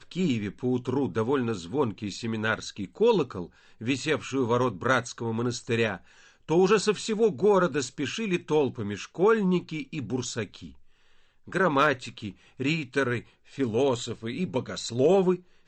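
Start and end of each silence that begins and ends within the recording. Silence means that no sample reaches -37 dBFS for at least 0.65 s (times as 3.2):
10.69–11.48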